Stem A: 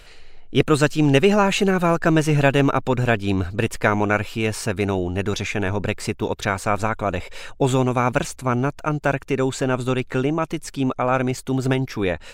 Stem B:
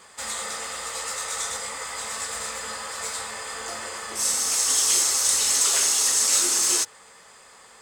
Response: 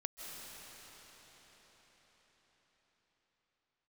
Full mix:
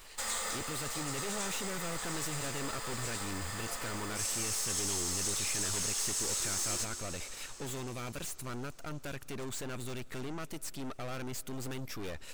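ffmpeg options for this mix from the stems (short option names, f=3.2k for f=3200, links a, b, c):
-filter_complex "[0:a]aemphasis=mode=production:type=75kf,aeval=exprs='(tanh(28.2*val(0)+0.6)-tanh(0.6))/28.2':c=same,volume=-10dB,asplit=3[a][b][c];[b]volume=-18.5dB[d];[1:a]acompressor=threshold=-23dB:ratio=6,acrusher=bits=7:dc=4:mix=0:aa=0.000001,volume=-5.5dB,asplit=2[e][f];[f]volume=-7.5dB[g];[c]apad=whole_len=344597[h];[e][h]sidechaincompress=threshold=-47dB:ratio=8:attack=43:release=413[i];[2:a]atrim=start_sample=2205[j];[d][g]amix=inputs=2:normalize=0[k];[k][j]afir=irnorm=-1:irlink=0[l];[a][i][l]amix=inputs=3:normalize=0"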